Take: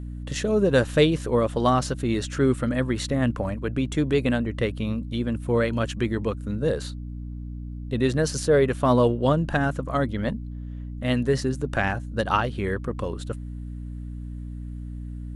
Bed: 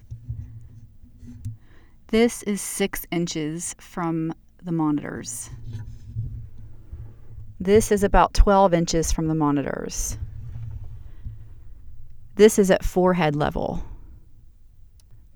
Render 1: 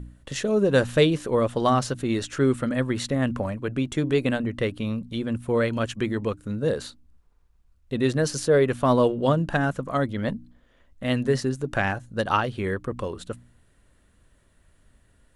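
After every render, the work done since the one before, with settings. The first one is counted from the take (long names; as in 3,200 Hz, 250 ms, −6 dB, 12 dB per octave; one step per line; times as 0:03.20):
hum removal 60 Hz, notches 5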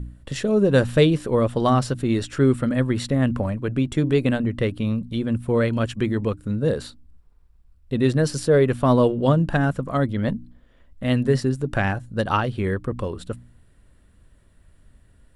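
low-shelf EQ 270 Hz +7 dB
notch filter 6,400 Hz, Q 9.1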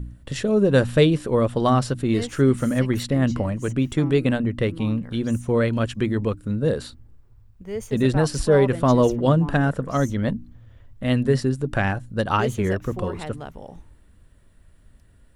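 mix in bed −14 dB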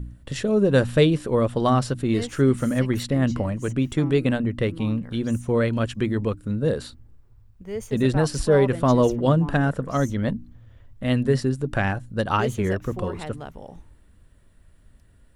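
level −1 dB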